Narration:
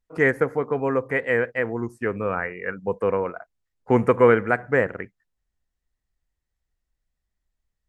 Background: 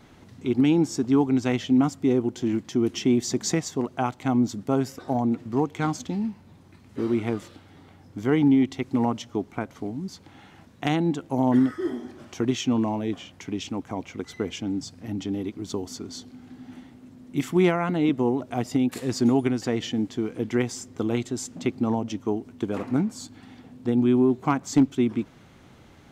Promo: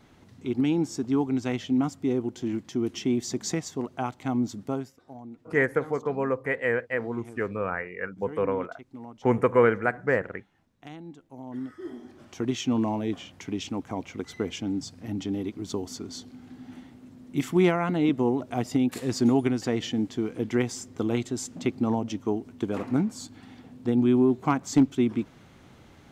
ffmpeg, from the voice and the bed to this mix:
-filter_complex "[0:a]adelay=5350,volume=-4dB[a];[1:a]volume=13.5dB,afade=t=out:st=4.67:d=0.25:silence=0.188365,afade=t=in:st=11.49:d=1.41:silence=0.125893[b];[a][b]amix=inputs=2:normalize=0"

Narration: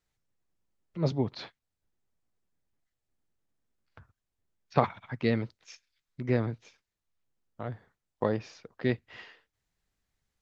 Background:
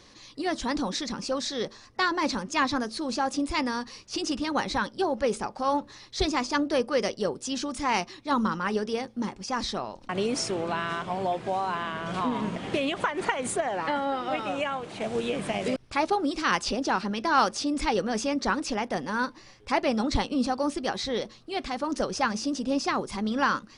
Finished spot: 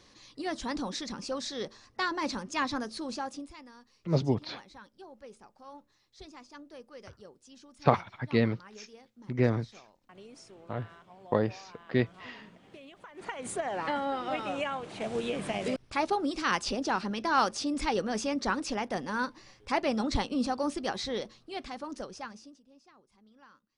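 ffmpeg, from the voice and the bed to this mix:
-filter_complex "[0:a]adelay=3100,volume=1.5dB[a];[1:a]volume=14dB,afade=t=out:st=3.03:d=0.54:silence=0.133352,afade=t=in:st=13.08:d=0.68:silence=0.105925,afade=t=out:st=20.98:d=1.63:silence=0.0334965[b];[a][b]amix=inputs=2:normalize=0"

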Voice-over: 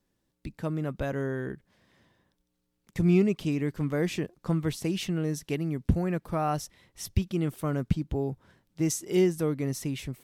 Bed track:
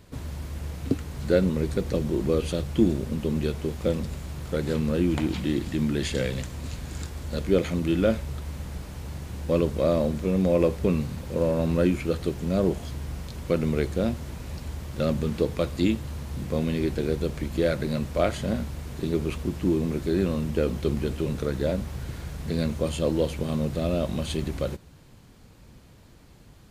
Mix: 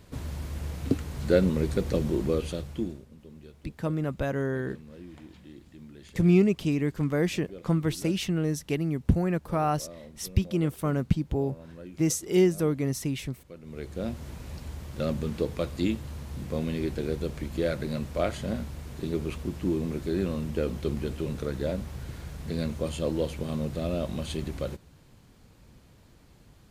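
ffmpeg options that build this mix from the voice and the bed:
-filter_complex "[0:a]adelay=3200,volume=2dB[a];[1:a]volume=17.5dB,afade=t=out:st=2.07:d=0.99:silence=0.0841395,afade=t=in:st=13.63:d=0.63:silence=0.125893[b];[a][b]amix=inputs=2:normalize=0"

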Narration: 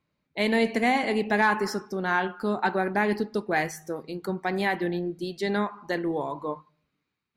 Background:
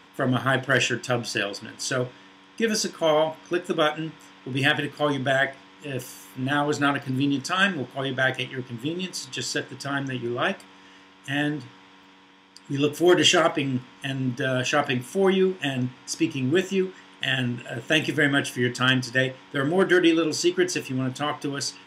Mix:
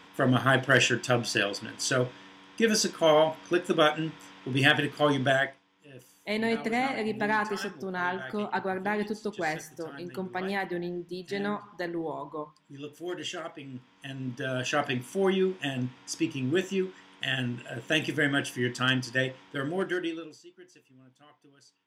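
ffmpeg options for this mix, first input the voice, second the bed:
-filter_complex "[0:a]adelay=5900,volume=-5dB[a];[1:a]volume=12.5dB,afade=t=out:st=5.27:d=0.33:silence=0.133352,afade=t=in:st=13.6:d=1.19:silence=0.223872,afade=t=out:st=19.37:d=1.04:silence=0.0562341[b];[a][b]amix=inputs=2:normalize=0"

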